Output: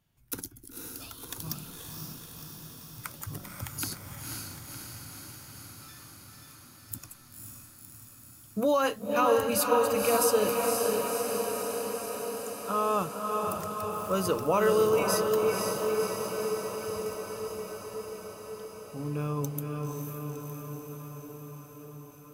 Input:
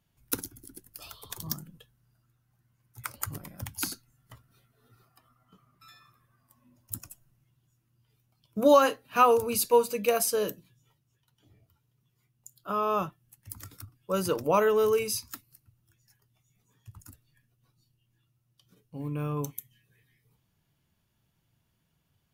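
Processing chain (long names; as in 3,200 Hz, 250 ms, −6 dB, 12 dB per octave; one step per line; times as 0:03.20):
brickwall limiter −17 dBFS, peak gain reduction 9 dB
on a send: feedback delay with all-pass diffusion 524 ms, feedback 73%, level −3 dB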